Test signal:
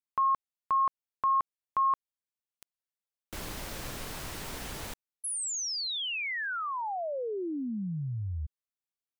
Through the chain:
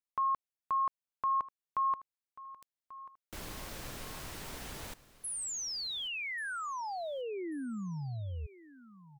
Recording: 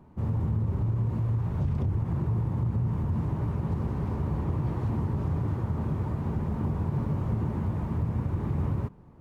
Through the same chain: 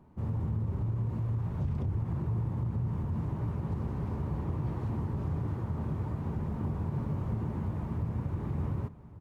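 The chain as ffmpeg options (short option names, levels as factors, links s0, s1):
-af "aecho=1:1:1138|2276:0.126|0.0352,volume=0.596"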